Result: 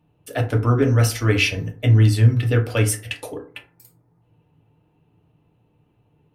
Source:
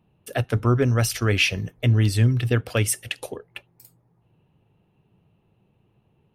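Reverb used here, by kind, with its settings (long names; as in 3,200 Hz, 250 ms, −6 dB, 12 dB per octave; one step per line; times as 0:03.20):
feedback delay network reverb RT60 0.42 s, low-frequency decay 1×, high-frequency decay 0.45×, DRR 0.5 dB
level −1 dB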